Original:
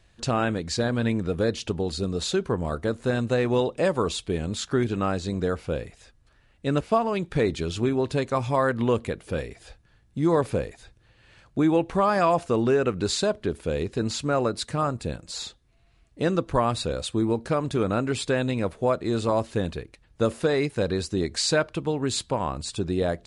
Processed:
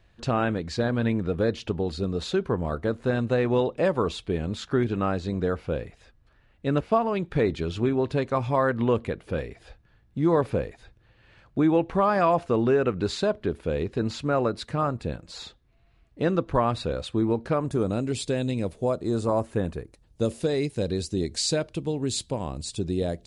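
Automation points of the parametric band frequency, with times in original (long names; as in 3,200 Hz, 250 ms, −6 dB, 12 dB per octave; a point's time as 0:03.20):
parametric band −12 dB 1.6 octaves
0:17.49 8,600 Hz
0:17.95 1,300 Hz
0:18.72 1,300 Hz
0:19.60 5,100 Hz
0:20.25 1,300 Hz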